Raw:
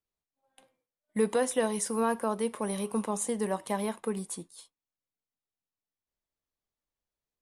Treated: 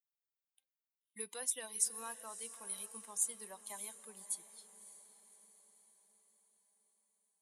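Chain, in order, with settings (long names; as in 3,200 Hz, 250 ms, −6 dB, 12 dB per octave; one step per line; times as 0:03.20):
spectral dynamics exaggerated over time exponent 1.5
first-order pre-emphasis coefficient 0.97
feedback delay with all-pass diffusion 585 ms, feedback 51%, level −14 dB
level +1 dB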